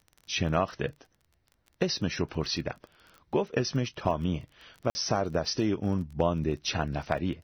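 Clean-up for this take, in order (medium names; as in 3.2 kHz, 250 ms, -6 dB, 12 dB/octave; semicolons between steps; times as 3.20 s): clip repair -12.5 dBFS; de-click; interpolate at 4.90 s, 50 ms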